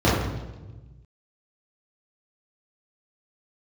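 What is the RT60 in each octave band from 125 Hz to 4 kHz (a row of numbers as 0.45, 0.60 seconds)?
1.9, 1.5, 1.3, 1.0, 0.90, 0.95 seconds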